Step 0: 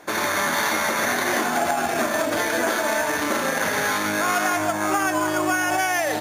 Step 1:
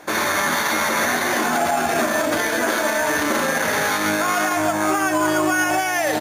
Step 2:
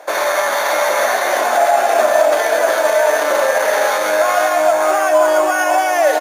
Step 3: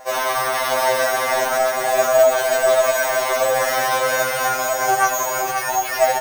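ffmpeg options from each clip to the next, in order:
-filter_complex "[0:a]alimiter=limit=0.188:level=0:latency=1:release=31,asplit=2[s0][s1];[s1]adelay=13,volume=0.266[s2];[s0][s2]amix=inputs=2:normalize=0,volume=1.5"
-af "highpass=f=590:t=q:w=3.5,aecho=1:1:528:0.422"
-af "acrusher=samples=6:mix=1:aa=0.000001,afftfilt=real='re*2.45*eq(mod(b,6),0)':imag='im*2.45*eq(mod(b,6),0)':win_size=2048:overlap=0.75"

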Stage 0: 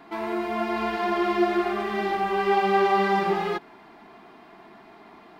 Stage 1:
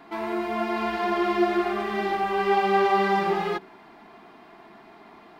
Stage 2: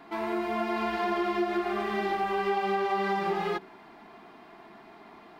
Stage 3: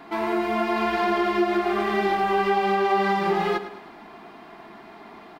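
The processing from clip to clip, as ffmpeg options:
-af "bandreject=f=63.49:t=h:w=4,bandreject=f=126.98:t=h:w=4,bandreject=f=190.47:t=h:w=4,bandreject=f=253.96:t=h:w=4,bandreject=f=317.45:t=h:w=4,bandreject=f=380.94:t=h:w=4,bandreject=f=444.43:t=h:w=4"
-af "acompressor=threshold=0.0708:ratio=6,volume=0.841"
-af "aecho=1:1:106|212|318|424:0.224|0.101|0.0453|0.0204,volume=2"

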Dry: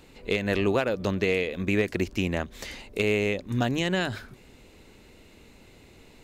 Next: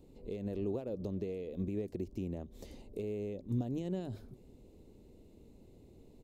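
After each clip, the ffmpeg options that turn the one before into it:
-af "alimiter=limit=0.0841:level=0:latency=1:release=203,firequalizer=gain_entry='entry(390,0);entry(1500,-24);entry(3600,-15);entry(12000,-9)':delay=0.05:min_phase=1,volume=0.631"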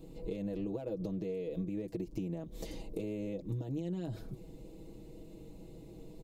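-af "aecho=1:1:6.2:0.94,acompressor=threshold=0.01:ratio=6,volume=1.88"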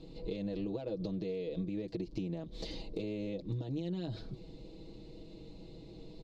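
-af "lowpass=f=4300:t=q:w=3.4"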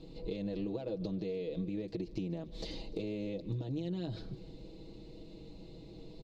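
-af "aecho=1:1:148|296|444|592|740:0.1|0.06|0.036|0.0216|0.013"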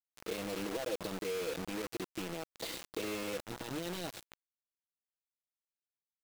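-af "bandpass=f=1600:t=q:w=0.66:csg=0,acrusher=bits=7:mix=0:aa=0.000001,volume=2.51"

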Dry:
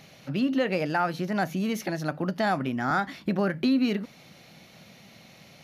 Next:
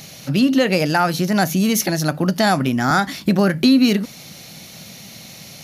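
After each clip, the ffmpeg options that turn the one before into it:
-af "bass=f=250:g=4,treble=f=4000:g=14,volume=2.51"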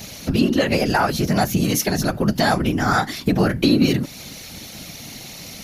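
-filter_complex "[0:a]afftfilt=real='hypot(re,im)*cos(2*PI*random(0))':imag='hypot(re,im)*sin(2*PI*random(1))':win_size=512:overlap=0.75,asplit=2[s0][s1];[s1]acompressor=threshold=0.0355:ratio=6,volume=1.33[s2];[s0][s2]amix=inputs=2:normalize=0,volume=1.12"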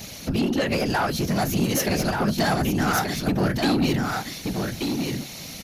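-filter_complex "[0:a]asoftclip=type=tanh:threshold=0.178,asplit=2[s0][s1];[s1]aecho=0:1:1181:0.596[s2];[s0][s2]amix=inputs=2:normalize=0,volume=0.794"

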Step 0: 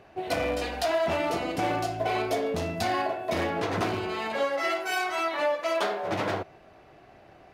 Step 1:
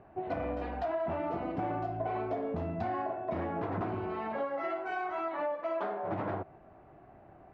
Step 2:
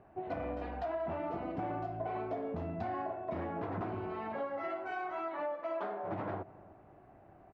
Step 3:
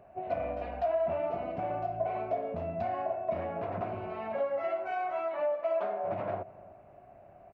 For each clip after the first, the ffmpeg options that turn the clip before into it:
-af "lowpass=1100,equalizer=f=480:w=2.2:g=-5.5,acompressor=threshold=0.0251:ratio=2.5"
-filter_complex "[0:a]asplit=2[s0][s1];[s1]adelay=292,lowpass=f=910:p=1,volume=0.119,asplit=2[s2][s3];[s3]adelay=292,lowpass=f=910:p=1,volume=0.52,asplit=2[s4][s5];[s5]adelay=292,lowpass=f=910:p=1,volume=0.52,asplit=2[s6][s7];[s7]adelay=292,lowpass=f=910:p=1,volume=0.52[s8];[s0][s2][s4][s6][s8]amix=inputs=5:normalize=0,volume=0.668"
-af "superequalizer=6b=0.562:8b=2.51:12b=1.78"

